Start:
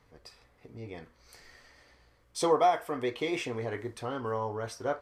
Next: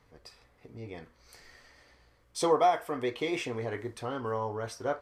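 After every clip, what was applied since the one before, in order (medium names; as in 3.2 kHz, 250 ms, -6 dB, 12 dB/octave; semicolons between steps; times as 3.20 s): no audible change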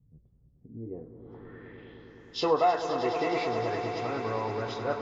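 knee-point frequency compression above 1.7 kHz 1.5:1; low-pass sweep 160 Hz -> 6.9 kHz, 0.54–2.26 s; echo with a slow build-up 104 ms, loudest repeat 5, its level -12 dB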